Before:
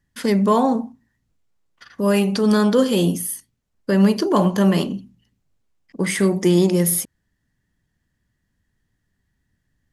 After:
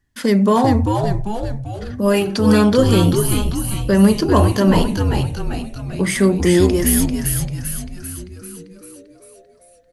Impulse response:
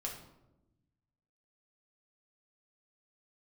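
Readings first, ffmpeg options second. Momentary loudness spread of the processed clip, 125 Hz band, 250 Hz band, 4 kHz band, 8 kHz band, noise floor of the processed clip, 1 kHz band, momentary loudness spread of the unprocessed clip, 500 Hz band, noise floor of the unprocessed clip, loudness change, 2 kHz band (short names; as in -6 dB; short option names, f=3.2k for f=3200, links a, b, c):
15 LU, +6.5 dB, +3.0 dB, +4.0 dB, +4.0 dB, -50 dBFS, +3.5 dB, 11 LU, +3.0 dB, -73 dBFS, +2.0 dB, +4.0 dB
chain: -filter_complex "[0:a]flanger=delay=2.7:depth=2.6:regen=-46:speed=0.89:shape=sinusoidal,asplit=2[a][b];[b]asplit=8[c][d][e][f][g][h][i][j];[c]adelay=393,afreqshift=-110,volume=-4dB[k];[d]adelay=786,afreqshift=-220,volume=-9dB[l];[e]adelay=1179,afreqshift=-330,volume=-14.1dB[m];[f]adelay=1572,afreqshift=-440,volume=-19.1dB[n];[g]adelay=1965,afreqshift=-550,volume=-24.1dB[o];[h]adelay=2358,afreqshift=-660,volume=-29.2dB[p];[i]adelay=2751,afreqshift=-770,volume=-34.2dB[q];[j]adelay=3144,afreqshift=-880,volume=-39.3dB[r];[k][l][m][n][o][p][q][r]amix=inputs=8:normalize=0[s];[a][s]amix=inputs=2:normalize=0,volume=6dB"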